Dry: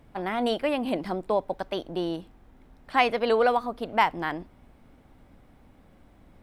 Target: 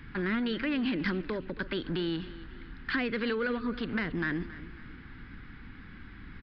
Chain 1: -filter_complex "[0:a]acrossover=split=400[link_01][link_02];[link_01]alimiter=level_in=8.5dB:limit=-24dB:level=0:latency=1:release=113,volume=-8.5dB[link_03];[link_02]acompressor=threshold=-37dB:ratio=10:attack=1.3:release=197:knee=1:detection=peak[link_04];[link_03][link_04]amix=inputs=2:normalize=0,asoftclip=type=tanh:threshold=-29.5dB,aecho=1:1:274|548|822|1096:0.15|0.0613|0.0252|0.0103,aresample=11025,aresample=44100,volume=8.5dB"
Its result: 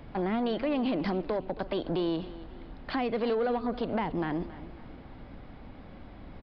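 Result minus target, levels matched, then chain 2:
2,000 Hz band −9.5 dB
-filter_complex "[0:a]acrossover=split=400[link_01][link_02];[link_01]alimiter=level_in=8.5dB:limit=-24dB:level=0:latency=1:release=113,volume=-8.5dB[link_03];[link_02]acompressor=threshold=-37dB:ratio=10:attack=1.3:release=197:knee=1:detection=peak,highpass=frequency=1600:width_type=q:width=3.3[link_04];[link_03][link_04]amix=inputs=2:normalize=0,asoftclip=type=tanh:threshold=-29.5dB,aecho=1:1:274|548|822|1096:0.15|0.0613|0.0252|0.0103,aresample=11025,aresample=44100,volume=8.5dB"

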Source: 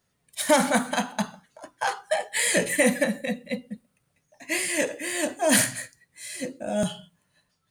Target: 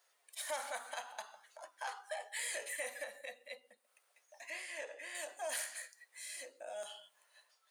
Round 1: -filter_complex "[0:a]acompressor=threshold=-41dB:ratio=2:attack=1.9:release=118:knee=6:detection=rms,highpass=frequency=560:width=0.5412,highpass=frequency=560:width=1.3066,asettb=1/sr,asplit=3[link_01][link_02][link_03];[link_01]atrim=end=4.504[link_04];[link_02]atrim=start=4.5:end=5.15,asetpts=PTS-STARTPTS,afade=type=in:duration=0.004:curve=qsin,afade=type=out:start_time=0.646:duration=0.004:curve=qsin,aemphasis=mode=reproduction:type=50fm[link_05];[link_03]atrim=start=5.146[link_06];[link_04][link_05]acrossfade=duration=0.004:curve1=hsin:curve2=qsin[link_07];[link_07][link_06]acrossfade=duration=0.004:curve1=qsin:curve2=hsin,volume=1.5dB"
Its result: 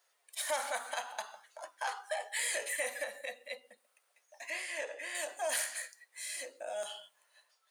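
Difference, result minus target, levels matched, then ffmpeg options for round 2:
downward compressor: peak gain reduction −6 dB
-filter_complex "[0:a]acompressor=threshold=-52.5dB:ratio=2:attack=1.9:release=118:knee=6:detection=rms,highpass=frequency=560:width=0.5412,highpass=frequency=560:width=1.3066,asettb=1/sr,asplit=3[link_01][link_02][link_03];[link_01]atrim=end=4.504[link_04];[link_02]atrim=start=4.5:end=5.15,asetpts=PTS-STARTPTS,afade=type=in:duration=0.004:curve=qsin,afade=type=out:start_time=0.646:duration=0.004:curve=qsin,aemphasis=mode=reproduction:type=50fm[link_05];[link_03]atrim=start=5.146[link_06];[link_04][link_05]acrossfade=duration=0.004:curve1=hsin:curve2=qsin[link_07];[link_07][link_06]acrossfade=duration=0.004:curve1=qsin:curve2=hsin,volume=1.5dB"

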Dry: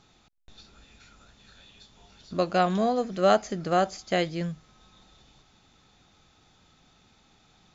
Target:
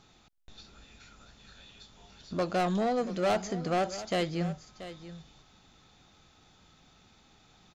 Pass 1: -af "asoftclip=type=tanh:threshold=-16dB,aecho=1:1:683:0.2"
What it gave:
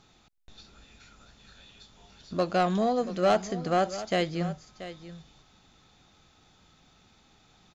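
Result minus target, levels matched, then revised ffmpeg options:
soft clipping: distortion −8 dB
-af "asoftclip=type=tanh:threshold=-23.5dB,aecho=1:1:683:0.2"

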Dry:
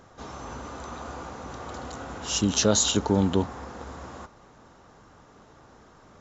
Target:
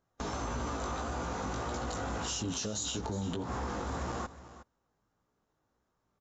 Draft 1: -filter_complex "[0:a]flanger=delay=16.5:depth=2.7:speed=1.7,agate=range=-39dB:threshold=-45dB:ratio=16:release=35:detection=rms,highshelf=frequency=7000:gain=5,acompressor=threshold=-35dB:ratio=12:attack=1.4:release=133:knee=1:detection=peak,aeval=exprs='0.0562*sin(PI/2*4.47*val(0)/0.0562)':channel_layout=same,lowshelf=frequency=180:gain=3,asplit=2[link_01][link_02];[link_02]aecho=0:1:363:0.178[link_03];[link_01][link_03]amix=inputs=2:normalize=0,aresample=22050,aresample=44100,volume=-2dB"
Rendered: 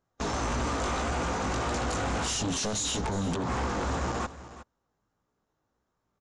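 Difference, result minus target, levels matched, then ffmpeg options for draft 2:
downward compressor: peak gain reduction −10 dB
-filter_complex "[0:a]flanger=delay=16.5:depth=2.7:speed=1.7,agate=range=-39dB:threshold=-45dB:ratio=16:release=35:detection=rms,highshelf=frequency=7000:gain=5,acompressor=threshold=-46dB:ratio=12:attack=1.4:release=133:knee=1:detection=peak,aeval=exprs='0.0562*sin(PI/2*4.47*val(0)/0.0562)':channel_layout=same,lowshelf=frequency=180:gain=3,asplit=2[link_01][link_02];[link_02]aecho=0:1:363:0.178[link_03];[link_01][link_03]amix=inputs=2:normalize=0,aresample=22050,aresample=44100,volume=-2dB"

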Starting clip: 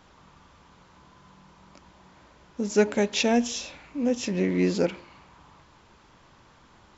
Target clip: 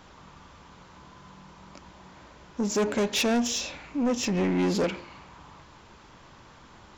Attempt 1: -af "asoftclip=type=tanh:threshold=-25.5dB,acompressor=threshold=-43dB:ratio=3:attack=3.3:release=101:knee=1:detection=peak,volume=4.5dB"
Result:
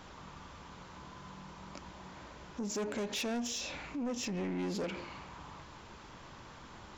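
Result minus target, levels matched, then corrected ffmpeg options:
downward compressor: peak gain reduction +11.5 dB
-af "asoftclip=type=tanh:threshold=-25.5dB,volume=4.5dB"

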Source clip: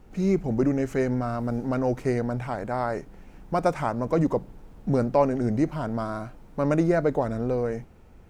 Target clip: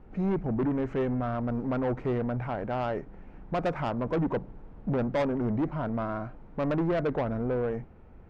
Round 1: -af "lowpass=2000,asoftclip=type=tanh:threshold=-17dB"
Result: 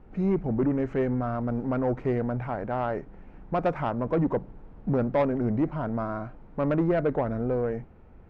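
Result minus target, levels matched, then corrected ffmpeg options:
soft clipping: distortion −6 dB
-af "lowpass=2000,asoftclip=type=tanh:threshold=-23dB"

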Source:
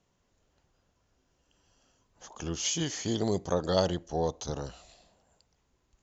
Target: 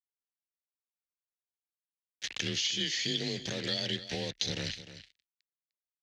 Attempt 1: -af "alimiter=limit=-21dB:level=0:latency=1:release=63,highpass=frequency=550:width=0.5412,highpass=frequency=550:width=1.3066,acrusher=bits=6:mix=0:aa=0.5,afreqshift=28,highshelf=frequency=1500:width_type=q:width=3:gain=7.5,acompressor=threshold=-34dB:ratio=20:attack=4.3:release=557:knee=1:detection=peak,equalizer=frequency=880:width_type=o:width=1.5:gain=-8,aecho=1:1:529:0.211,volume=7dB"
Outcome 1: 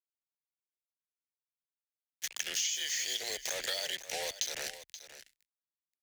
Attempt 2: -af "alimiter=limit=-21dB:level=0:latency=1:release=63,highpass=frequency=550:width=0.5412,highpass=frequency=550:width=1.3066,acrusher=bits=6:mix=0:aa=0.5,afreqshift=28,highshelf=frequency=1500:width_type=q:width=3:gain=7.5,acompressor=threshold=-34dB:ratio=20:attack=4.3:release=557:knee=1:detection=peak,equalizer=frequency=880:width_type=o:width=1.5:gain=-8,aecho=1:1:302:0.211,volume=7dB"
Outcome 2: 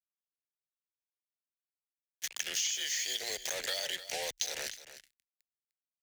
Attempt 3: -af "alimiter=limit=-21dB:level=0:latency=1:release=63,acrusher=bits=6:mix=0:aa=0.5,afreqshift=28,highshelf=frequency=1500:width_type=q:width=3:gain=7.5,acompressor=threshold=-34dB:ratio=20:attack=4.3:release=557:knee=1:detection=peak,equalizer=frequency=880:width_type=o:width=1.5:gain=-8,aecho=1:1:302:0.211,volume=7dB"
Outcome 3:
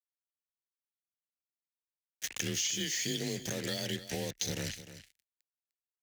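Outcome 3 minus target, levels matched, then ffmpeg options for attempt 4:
4,000 Hz band −3.5 dB
-af "alimiter=limit=-21dB:level=0:latency=1:release=63,acrusher=bits=6:mix=0:aa=0.5,afreqshift=28,highshelf=frequency=1500:width_type=q:width=3:gain=7.5,acompressor=threshold=-34dB:ratio=20:attack=4.3:release=557:knee=1:detection=peak,lowpass=frequency=4100:width_type=q:width=2.2,equalizer=frequency=880:width_type=o:width=1.5:gain=-8,aecho=1:1:302:0.211,volume=7dB"

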